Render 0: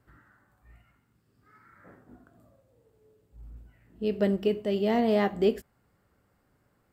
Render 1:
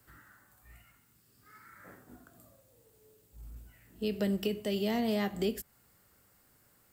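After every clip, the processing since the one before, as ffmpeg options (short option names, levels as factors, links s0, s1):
-filter_complex "[0:a]acrossover=split=220[s0][s1];[s1]acompressor=threshold=0.0251:ratio=4[s2];[s0][s2]amix=inputs=2:normalize=0,acrossover=split=260[s3][s4];[s4]crystalizer=i=5.5:c=0[s5];[s3][s5]amix=inputs=2:normalize=0,volume=0.841"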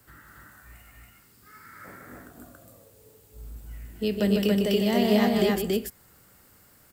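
-af "aecho=1:1:151.6|279.9:0.501|0.891,volume=2"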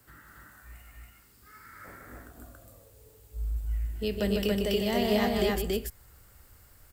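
-af "asubboost=boost=9.5:cutoff=62,volume=0.794"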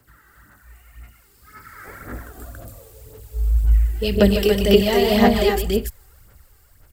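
-af "dynaudnorm=f=310:g=11:m=3.76,aphaser=in_gain=1:out_gain=1:delay=2.6:decay=0.56:speed=1.9:type=sinusoidal,volume=0.841"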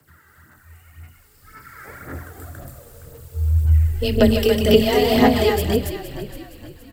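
-filter_complex "[0:a]afreqshift=25,asplit=5[s0][s1][s2][s3][s4];[s1]adelay=467,afreqshift=-52,volume=0.224[s5];[s2]adelay=934,afreqshift=-104,volume=0.0923[s6];[s3]adelay=1401,afreqshift=-156,volume=0.0376[s7];[s4]adelay=1868,afreqshift=-208,volume=0.0155[s8];[s0][s5][s6][s7][s8]amix=inputs=5:normalize=0"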